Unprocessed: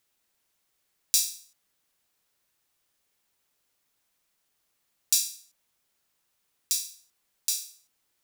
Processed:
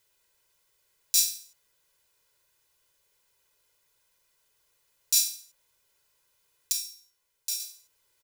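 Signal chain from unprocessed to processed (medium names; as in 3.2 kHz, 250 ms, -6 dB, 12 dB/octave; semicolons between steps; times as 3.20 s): comb 2 ms, depth 78%; peak limiter -10 dBFS, peak gain reduction 8.5 dB; 6.72–7.60 s: feedback comb 63 Hz, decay 0.36 s, harmonics all, mix 70%; trim +2 dB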